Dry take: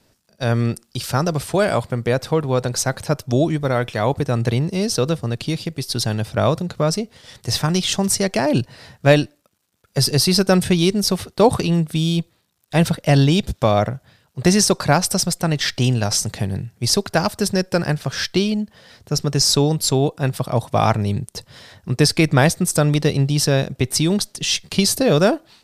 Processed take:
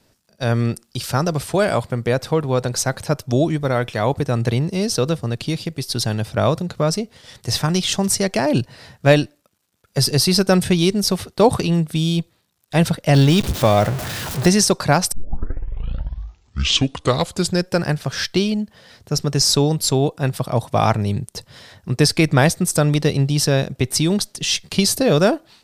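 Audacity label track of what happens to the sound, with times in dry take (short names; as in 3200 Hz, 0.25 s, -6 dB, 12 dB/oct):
13.140000	14.480000	zero-crossing step of -21.5 dBFS
15.120000	15.120000	tape start 2.59 s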